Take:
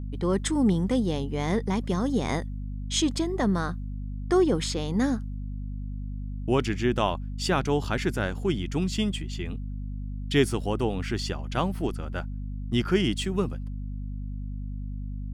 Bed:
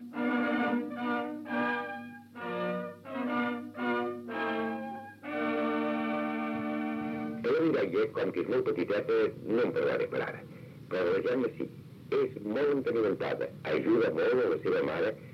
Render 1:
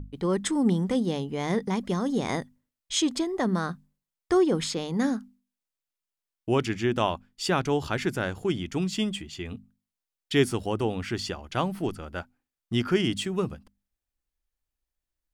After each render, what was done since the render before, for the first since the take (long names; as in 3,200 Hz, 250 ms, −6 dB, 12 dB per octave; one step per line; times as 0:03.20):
mains-hum notches 50/100/150/200/250 Hz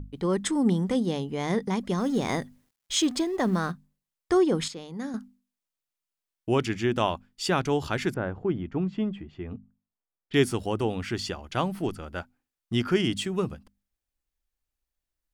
0:01.98–0:03.72: mu-law and A-law mismatch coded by mu
0:04.68–0:05.14: clip gain −9 dB
0:08.14–0:10.34: low-pass filter 1,300 Hz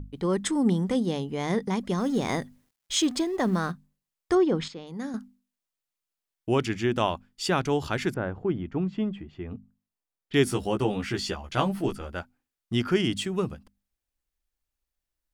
0:04.35–0:04.87: high-frequency loss of the air 120 metres
0:10.45–0:12.12: double-tracking delay 15 ms −3.5 dB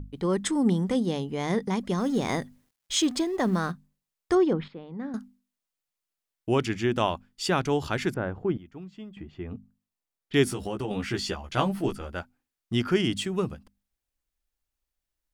0:04.53–0:05.14: high-frequency loss of the air 450 metres
0:08.57–0:09.17: first-order pre-emphasis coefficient 0.8
0:10.45–0:10.91: downward compressor, threshold −27 dBFS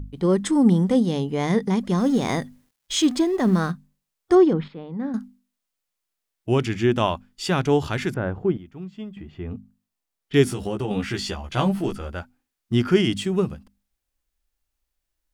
harmonic and percussive parts rebalanced harmonic +7 dB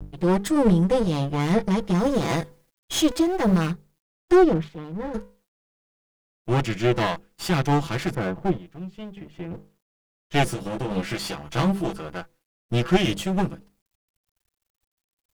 lower of the sound and its delayed copy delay 6 ms
bit-depth reduction 12 bits, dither none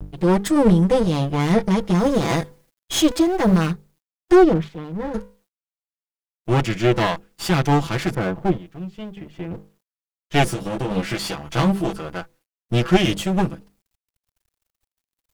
level +3.5 dB